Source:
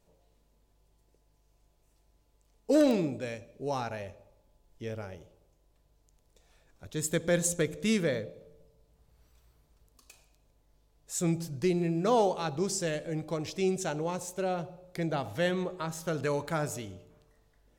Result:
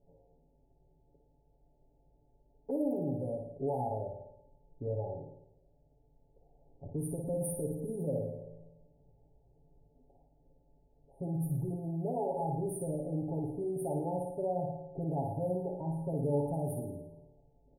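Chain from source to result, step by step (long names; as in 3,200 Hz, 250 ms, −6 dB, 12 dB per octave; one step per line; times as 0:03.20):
linear-phase brick-wall band-stop 940–8,900 Hz
low-pass that shuts in the quiet parts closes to 680 Hz, open at −29 dBFS
in parallel at −2 dB: downward compressor, threshold −39 dBFS, peak gain reduction 18 dB
on the sum: brickwall limiter −26 dBFS, peak gain reduction 11.5 dB
comb filter 7.2 ms, depth 92%
flutter between parallel walls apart 9.5 metres, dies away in 0.62 s
level −5 dB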